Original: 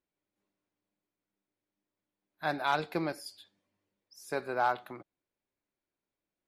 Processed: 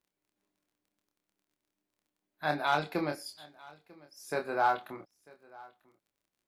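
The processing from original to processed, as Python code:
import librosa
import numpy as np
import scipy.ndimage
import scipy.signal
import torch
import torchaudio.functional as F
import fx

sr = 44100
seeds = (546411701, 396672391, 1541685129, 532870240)

p1 = fx.dmg_crackle(x, sr, seeds[0], per_s=21.0, level_db=-59.0)
p2 = fx.doubler(p1, sr, ms=27.0, db=-5.0)
y = p2 + fx.echo_single(p2, sr, ms=945, db=-23.0, dry=0)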